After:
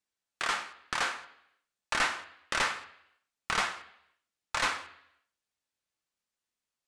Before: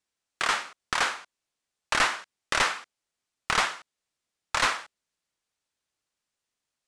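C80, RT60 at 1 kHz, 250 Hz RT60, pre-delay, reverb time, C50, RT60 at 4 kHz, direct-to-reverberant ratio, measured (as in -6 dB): 16.5 dB, 0.75 s, 0.75 s, 3 ms, 0.75 s, 14.0 dB, 0.80 s, 7.0 dB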